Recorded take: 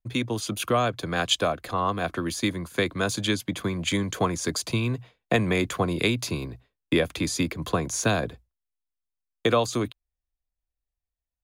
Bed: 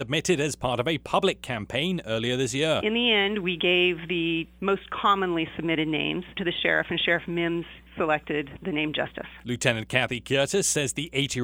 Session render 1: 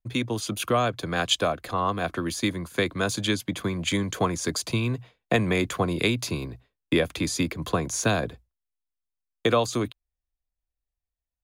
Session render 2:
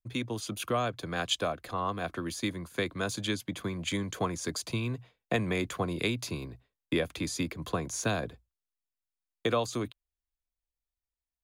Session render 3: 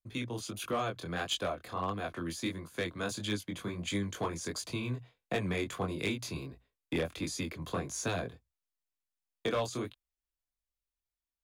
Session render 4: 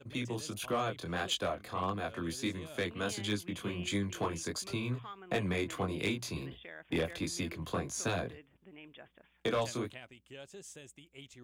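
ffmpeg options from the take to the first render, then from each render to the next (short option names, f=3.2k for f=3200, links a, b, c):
-af anull
-af "volume=-6.5dB"
-af "flanger=delay=19.5:depth=5.2:speed=1.5,volume=25.5dB,asoftclip=hard,volume=-25.5dB"
-filter_complex "[1:a]volume=-26dB[a];[0:a][a]amix=inputs=2:normalize=0"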